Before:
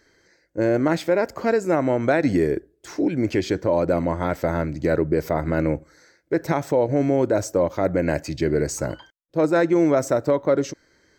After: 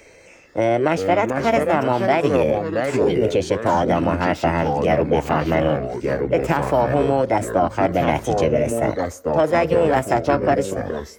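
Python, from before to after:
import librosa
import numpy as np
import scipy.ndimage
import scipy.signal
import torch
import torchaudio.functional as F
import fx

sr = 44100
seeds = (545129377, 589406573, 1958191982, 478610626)

p1 = fx.peak_eq(x, sr, hz=7400.0, db=-7.5, octaves=0.5)
p2 = fx.rider(p1, sr, range_db=10, speed_s=0.5)
p3 = p1 + (p2 * 10.0 ** (-2.5 / 20.0))
p4 = fx.echo_pitch(p3, sr, ms=280, semitones=-3, count=2, db_per_echo=-6.0)
p5 = fx.formant_shift(p4, sr, semitones=5)
p6 = fx.band_squash(p5, sr, depth_pct=40)
y = p6 * 10.0 ** (-3.0 / 20.0)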